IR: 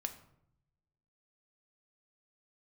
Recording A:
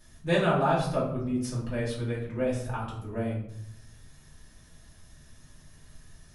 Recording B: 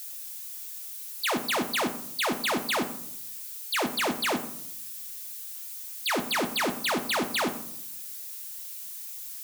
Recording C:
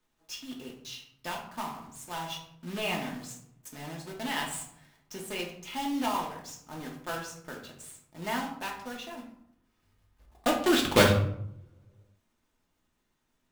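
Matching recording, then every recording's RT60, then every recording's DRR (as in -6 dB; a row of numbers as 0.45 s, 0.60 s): B; 0.70 s, 0.70 s, 0.70 s; -8.5 dB, 6.0 dB, -1.0 dB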